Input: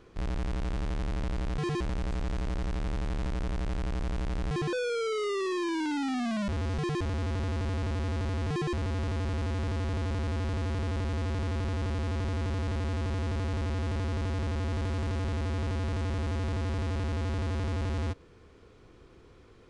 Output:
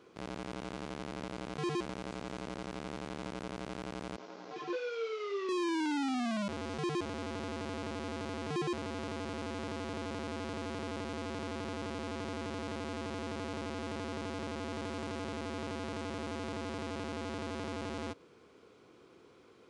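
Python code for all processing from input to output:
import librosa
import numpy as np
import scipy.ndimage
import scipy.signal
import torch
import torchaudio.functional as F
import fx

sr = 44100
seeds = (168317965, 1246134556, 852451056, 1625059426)

y = fx.chain(x, sr, fx.cvsd(bps=32000),
    fx.highpass(hz=320.0, slope=12),
    fx.detune_double(cents=18), at=(4.16, 5.49))
y = scipy.signal.sosfilt(scipy.signal.butter(2, 210.0, 'highpass', fs=sr, output='sos'), y)
y = fx.notch(y, sr, hz=1800.0, q=11.0)
y = y * 10.0 ** (-1.5 / 20.0)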